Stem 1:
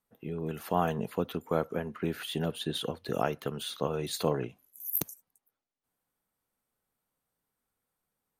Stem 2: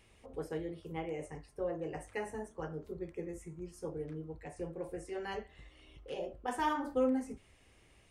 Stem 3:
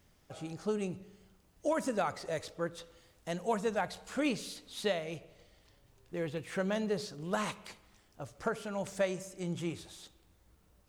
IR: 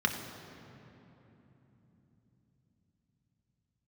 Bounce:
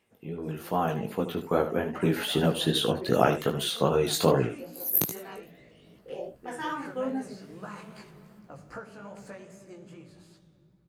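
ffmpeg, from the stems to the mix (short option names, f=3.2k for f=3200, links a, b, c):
-filter_complex "[0:a]volume=2.5dB,asplit=2[a][b];[b]volume=-11.5dB[c];[1:a]highpass=170,aphaser=in_gain=1:out_gain=1:delay=1.6:decay=0.44:speed=0.33:type=triangular,volume=-6.5dB[d];[2:a]acompressor=threshold=-42dB:ratio=3,adelay=300,volume=-11dB,asplit=2[e][f];[f]volume=-10dB[g];[3:a]atrim=start_sample=2205[h];[g][h]afir=irnorm=-1:irlink=0[i];[c]aecho=0:1:76:1[j];[a][d][e][i][j]amix=inputs=5:normalize=0,dynaudnorm=f=300:g=11:m=12dB,flanger=delay=15:depth=6.2:speed=2.5"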